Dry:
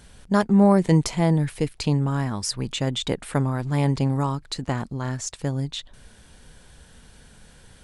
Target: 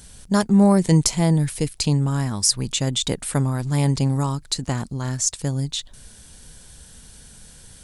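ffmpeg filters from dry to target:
ffmpeg -i in.wav -af "bass=frequency=250:gain=4,treble=frequency=4000:gain=13,volume=-1dB" out.wav

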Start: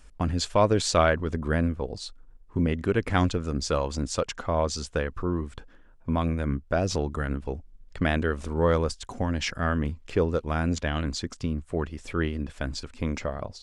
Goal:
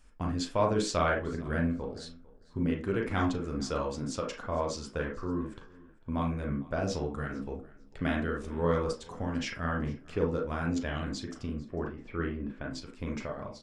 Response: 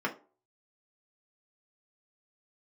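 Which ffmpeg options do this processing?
-filter_complex "[0:a]asettb=1/sr,asplit=3[link_01][link_02][link_03];[link_01]atrim=end=11.574[link_04];[link_02]atrim=start=11.57:end=12.71,asetpts=PTS-STARTPTS,afade=type=in:duration=0.004:curve=qsin,afade=type=out:start_time=1.136:duration=0.004:curve=qsin,lowpass=2300[link_05];[link_03]atrim=start=12.706[link_06];[link_04][link_05]acrossfade=duration=0.004:curve1=hsin:curve2=qsin[link_07];[link_07][link_06]acrossfade=duration=0.004:curve1=qsin:curve2=hsin,asplit=2[link_08][link_09];[1:a]atrim=start_sample=2205,adelay=36[link_10];[link_09][link_10]afir=irnorm=-1:irlink=0,volume=-8.5dB[link_11];[link_08][link_11]amix=inputs=2:normalize=0,flanger=delay=6.9:depth=4.8:regen=-57:speed=1.5:shape=triangular,aecho=1:1:449|898:0.075|0.0135,volume=-4dB"

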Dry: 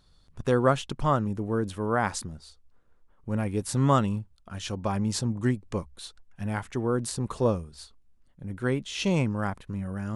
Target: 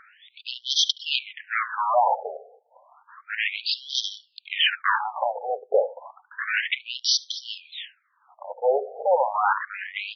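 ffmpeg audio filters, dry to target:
ffmpeg -i in.wav -filter_complex "[0:a]asplit=2[link_01][link_02];[link_02]asoftclip=type=hard:threshold=-18.5dB,volume=-8.5dB[link_03];[link_01][link_03]amix=inputs=2:normalize=0,acrossover=split=310[link_04][link_05];[link_04]acompressor=threshold=-37dB:ratio=6[link_06];[link_06][link_05]amix=inputs=2:normalize=0,asplit=2[link_07][link_08];[link_08]adelay=72,lowpass=frequency=3000:poles=1,volume=-19dB,asplit=2[link_09][link_10];[link_10]adelay=72,lowpass=frequency=3000:poles=1,volume=0.22[link_11];[link_07][link_09][link_11]amix=inputs=3:normalize=0,areverse,acompressor=threshold=-29dB:ratio=16,areverse,aeval=exprs='0.126*sin(PI/2*4.47*val(0)/0.126)':channel_layout=same,afftfilt=real='re*between(b*sr/1024,570*pow(4400/570,0.5+0.5*sin(2*PI*0.31*pts/sr))/1.41,570*pow(4400/570,0.5+0.5*sin(2*PI*0.31*pts/sr))*1.41)':imag='im*between(b*sr/1024,570*pow(4400/570,0.5+0.5*sin(2*PI*0.31*pts/sr))/1.41,570*pow(4400/570,0.5+0.5*sin(2*PI*0.31*pts/sr))*1.41)':win_size=1024:overlap=0.75,volume=7.5dB" out.wav

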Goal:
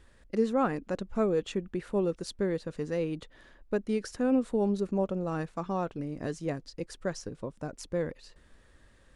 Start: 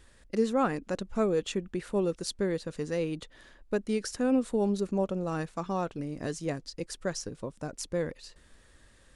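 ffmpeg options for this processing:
ffmpeg -i in.wav -af "highshelf=frequency=3500:gain=-8.5" out.wav

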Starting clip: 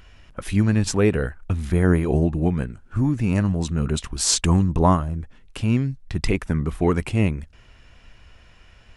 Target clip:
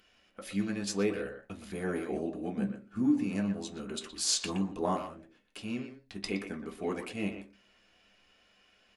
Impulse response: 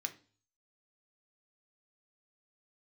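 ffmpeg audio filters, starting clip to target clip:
-filter_complex "[0:a]asettb=1/sr,asplit=3[link_01][link_02][link_03];[link_01]atrim=end=2.574[link_04];[link_02]atrim=start=2.57:end=3.23,asetpts=PTS-STARTPTS,afade=type=in:duration=0.004:curve=qsin,afade=type=out:start_time=0.656:duration=0.004:curve=qsin,equalizer=frequency=210:width=1:gain=12[link_05];[link_03]atrim=start=3.226[link_06];[link_04][link_05]acrossfade=duration=0.004:curve1=hsin:curve2=qsin[link_07];[link_07][link_06]acrossfade=duration=0.004:curve1=qsin:curve2=hsin,asplit=2[link_08][link_09];[link_09]adelay=120,highpass=300,lowpass=3400,asoftclip=type=hard:threshold=-12dB,volume=-8dB[link_10];[link_08][link_10]amix=inputs=2:normalize=0[link_11];[1:a]atrim=start_sample=2205,asetrate=83790,aresample=44100[link_12];[link_11][link_12]afir=irnorm=-1:irlink=0,volume=-2.5dB"

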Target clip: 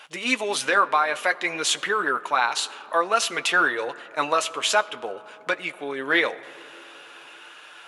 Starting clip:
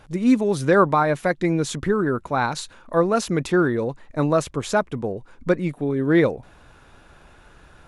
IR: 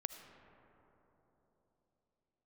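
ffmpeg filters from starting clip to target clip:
-filter_complex "[0:a]highpass=920,equalizer=frequency=2900:width=2.5:gain=10,alimiter=limit=-16.5dB:level=0:latency=1:release=405,flanger=delay=6.6:depth=2.8:regen=-50:speed=0.53:shape=sinusoidal,asplit=2[link_01][link_02];[1:a]atrim=start_sample=2205[link_03];[link_02][link_03]afir=irnorm=-1:irlink=0,volume=-6dB[link_04];[link_01][link_04]amix=inputs=2:normalize=0,volume=8.5dB"

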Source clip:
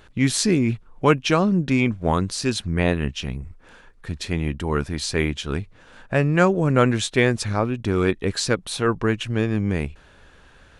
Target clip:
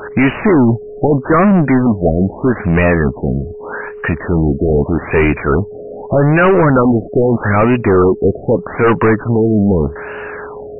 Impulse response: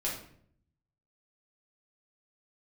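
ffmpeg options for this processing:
-filter_complex "[0:a]aeval=exprs='val(0)+0.00282*sin(2*PI*420*n/s)':channel_layout=same,asplit=2[link_01][link_02];[link_02]highpass=frequency=720:poles=1,volume=36dB,asoftclip=type=tanh:threshold=-1.5dB[link_03];[link_01][link_03]amix=inputs=2:normalize=0,lowpass=frequency=1600:poles=1,volume=-6dB,afftfilt=real='re*lt(b*sr/1024,710*pow(3000/710,0.5+0.5*sin(2*PI*0.81*pts/sr)))':imag='im*lt(b*sr/1024,710*pow(3000/710,0.5+0.5*sin(2*PI*0.81*pts/sr)))':win_size=1024:overlap=0.75"

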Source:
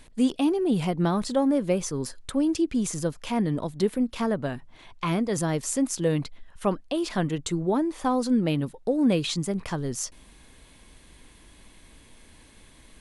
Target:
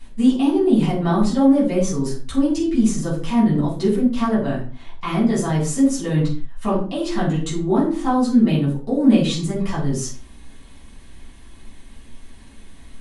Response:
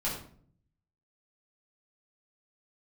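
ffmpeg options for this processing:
-filter_complex "[1:a]atrim=start_sample=2205,afade=type=out:start_time=0.4:duration=0.01,atrim=end_sample=18081,asetrate=57330,aresample=44100[link_01];[0:a][link_01]afir=irnorm=-1:irlink=0"

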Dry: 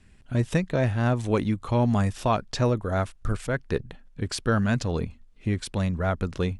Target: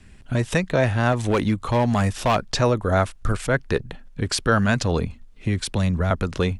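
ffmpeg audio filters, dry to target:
ffmpeg -i in.wav -filter_complex "[0:a]acrossover=split=510|970[link_01][link_02][link_03];[link_01]alimiter=limit=-22dB:level=0:latency=1:release=207[link_04];[link_04][link_02][link_03]amix=inputs=3:normalize=0,asettb=1/sr,asplit=3[link_05][link_06][link_07];[link_05]atrim=end=1.124[link_08];[link_06]atrim=start=1.12:end=2.36,asetpts=PTS-STARTPTS,afade=type=in:duration=0.004:curve=qsin,afade=type=out:start_time=1.236:duration=0.004:curve=qsin,volume=21.5dB,asoftclip=hard,volume=-21.5dB[link_09];[link_07]atrim=start=2.356[link_10];[link_08][link_09]acrossfade=duration=0.004:curve1=hsin:curve2=qsin[link_11];[link_11][link_10]acrossfade=duration=0.004:curve1=qsin:curve2=hsin,asettb=1/sr,asplit=3[link_12][link_13][link_14];[link_12]atrim=end=4.994[link_15];[link_13]atrim=start=4.99:end=6.11,asetpts=PTS-STARTPTS,afade=type=in:duration=0.004:curve=qsin,afade=type=out:start_time=1.116:duration=0.004:curve=qsin,acrossover=split=220|3000[link_16][link_17][link_18];[link_17]acompressor=threshold=-34dB:ratio=6[link_19];[link_16][link_19][link_18]amix=inputs=3:normalize=0[link_20];[link_14]atrim=start=6.106[link_21];[link_15][link_20]acrossfade=duration=0.004:curve1=hsin:curve2=qsin[link_22];[link_22][link_21]acrossfade=duration=0.004:curve1=qsin:curve2=hsin,volume=7.5dB" out.wav

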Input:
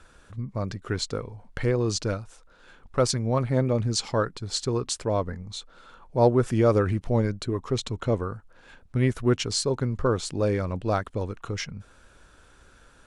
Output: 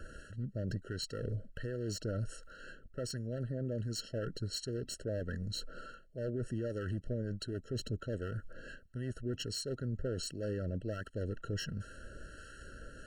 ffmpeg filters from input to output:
ffmpeg -i in.wav -filter_complex "[0:a]areverse,acompressor=threshold=-37dB:ratio=8,areverse,aeval=exprs='clip(val(0),-1,0.0141)':channel_layout=same,acrossover=split=1100[link_01][link_02];[link_01]aeval=exprs='val(0)*(1-0.5/2+0.5/2*cos(2*PI*1.4*n/s))':channel_layout=same[link_03];[link_02]aeval=exprs='val(0)*(1-0.5/2-0.5/2*cos(2*PI*1.4*n/s))':channel_layout=same[link_04];[link_03][link_04]amix=inputs=2:normalize=0,alimiter=level_in=11.5dB:limit=-24dB:level=0:latency=1:release=44,volume=-11.5dB,afftfilt=real='re*eq(mod(floor(b*sr/1024/650),2),0)':imag='im*eq(mod(floor(b*sr/1024/650),2),0)':win_size=1024:overlap=0.75,volume=7.5dB" out.wav

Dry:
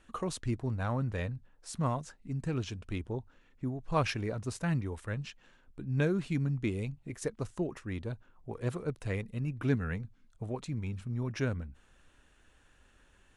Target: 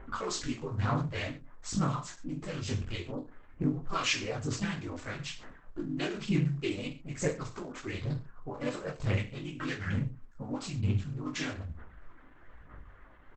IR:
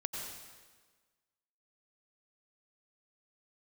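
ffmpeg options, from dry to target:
-filter_complex "[0:a]equalizer=frequency=1100:width_type=o:width=0.45:gain=8,acrossover=split=2000[link_01][link_02];[link_01]acompressor=threshold=-42dB:ratio=5[link_03];[link_02]aeval=exprs='val(0)*gte(abs(val(0)),0.00133)':channel_layout=same[link_04];[link_03][link_04]amix=inputs=2:normalize=0,aphaser=in_gain=1:out_gain=1:delay=4.1:decay=0.69:speed=1.1:type=sinusoidal,asplit=2[link_05][link_06];[link_06]asetrate=52444,aresample=44100,atempo=0.840896,volume=-1dB[link_07];[link_05][link_07]amix=inputs=2:normalize=0,asplit=2[link_08][link_09];[link_09]asoftclip=type=tanh:threshold=-31dB,volume=-12dB[link_10];[link_08][link_10]amix=inputs=2:normalize=0,aecho=1:1:20|43|69.45|99.87|134.8:0.631|0.398|0.251|0.158|0.1" -ar 48000 -c:a libopus -b:a 12k

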